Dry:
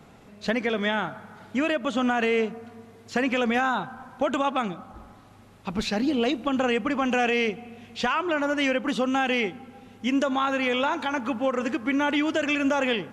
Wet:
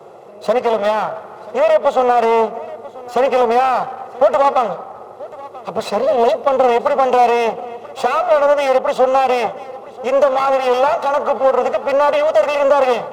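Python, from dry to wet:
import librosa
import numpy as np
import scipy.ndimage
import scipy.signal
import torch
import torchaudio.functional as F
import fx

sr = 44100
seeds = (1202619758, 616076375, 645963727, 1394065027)

p1 = fx.lower_of_two(x, sr, delay_ms=1.5)
p2 = scipy.signal.sosfilt(scipy.signal.butter(4, 110.0, 'highpass', fs=sr, output='sos'), p1)
p3 = fx.band_shelf(p2, sr, hz=720.0, db=14.0, octaves=1.7)
p4 = fx.dmg_noise_band(p3, sr, seeds[0], low_hz=350.0, high_hz=530.0, level_db=-46.0)
p5 = np.clip(p4, -10.0 ** (-17.0 / 20.0), 10.0 ** (-17.0 / 20.0))
p6 = p4 + F.gain(torch.from_numpy(p5), -10.0).numpy()
y = p6 + 10.0 ** (-19.5 / 20.0) * np.pad(p6, (int(985 * sr / 1000.0), 0))[:len(p6)]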